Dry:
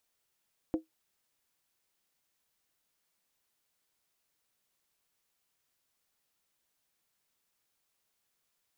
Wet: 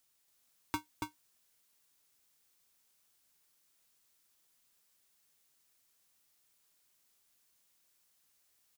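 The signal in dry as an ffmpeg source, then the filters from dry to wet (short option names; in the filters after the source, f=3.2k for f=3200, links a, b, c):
-f lavfi -i "aevalsrc='0.075*pow(10,-3*t/0.14)*sin(2*PI*319*t)+0.0251*pow(10,-3*t/0.111)*sin(2*PI*508.5*t)+0.00841*pow(10,-3*t/0.096)*sin(2*PI*681.4*t)+0.00282*pow(10,-3*t/0.092)*sin(2*PI*732.4*t)+0.000944*pow(10,-3*t/0.086)*sin(2*PI*846.3*t)':d=0.63:s=44100"
-filter_complex "[0:a]bass=f=250:g=-9,treble=f=4k:g=6,asplit=2[a][b];[b]aecho=0:1:281:0.668[c];[a][c]amix=inputs=2:normalize=0,aeval=exprs='val(0)*sgn(sin(2*PI*620*n/s))':c=same"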